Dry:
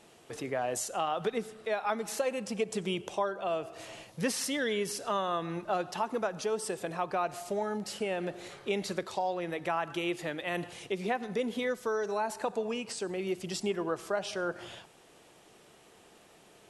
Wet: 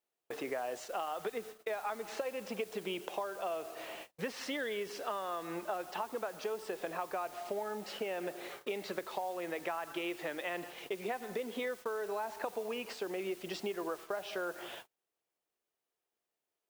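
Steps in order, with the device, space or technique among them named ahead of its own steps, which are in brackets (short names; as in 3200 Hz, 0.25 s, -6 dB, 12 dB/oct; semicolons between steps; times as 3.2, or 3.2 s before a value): baby monitor (BPF 330–3100 Hz; compressor 6:1, threshold -37 dBFS, peak gain reduction 11 dB; white noise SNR 17 dB; gate -49 dBFS, range -36 dB); gain +2.5 dB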